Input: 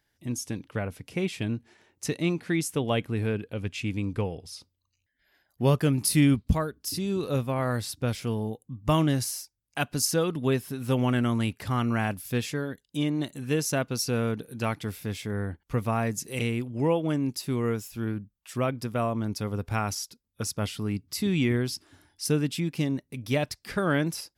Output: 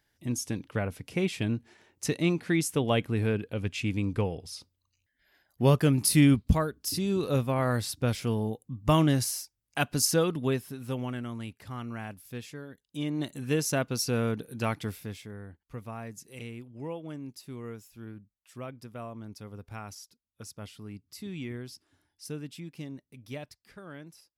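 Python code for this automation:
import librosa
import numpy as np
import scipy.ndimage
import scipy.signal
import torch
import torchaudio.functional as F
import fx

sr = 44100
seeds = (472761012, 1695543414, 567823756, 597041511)

y = fx.gain(x, sr, db=fx.line((10.21, 0.5), (11.24, -11.5), (12.68, -11.5), (13.29, -1.0), (14.86, -1.0), (15.39, -13.0), (23.33, -13.0), (23.8, -20.0)))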